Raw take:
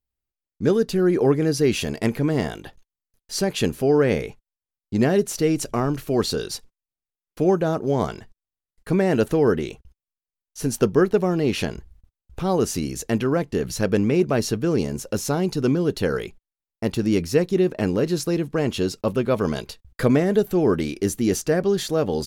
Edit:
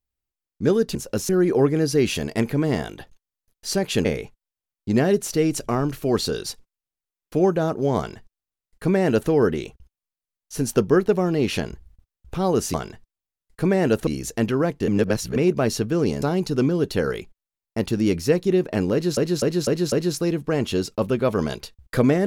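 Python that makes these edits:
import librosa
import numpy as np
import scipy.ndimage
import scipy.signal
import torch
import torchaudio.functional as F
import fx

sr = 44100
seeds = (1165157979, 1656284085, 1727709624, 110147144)

y = fx.edit(x, sr, fx.cut(start_s=3.71, length_s=0.39),
    fx.duplicate(start_s=8.02, length_s=1.33, to_s=12.79),
    fx.reverse_span(start_s=13.6, length_s=0.48),
    fx.move(start_s=14.94, length_s=0.34, to_s=0.95),
    fx.repeat(start_s=17.98, length_s=0.25, count=5), tone=tone)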